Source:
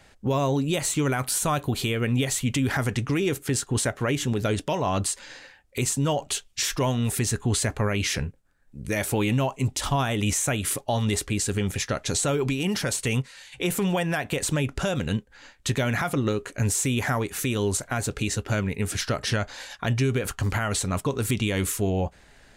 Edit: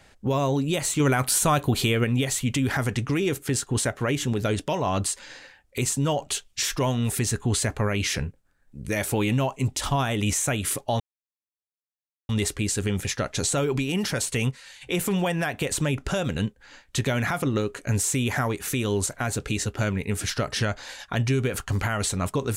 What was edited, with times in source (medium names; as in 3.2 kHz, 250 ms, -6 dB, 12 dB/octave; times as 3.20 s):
1.00–2.04 s: gain +3.5 dB
11.00 s: insert silence 1.29 s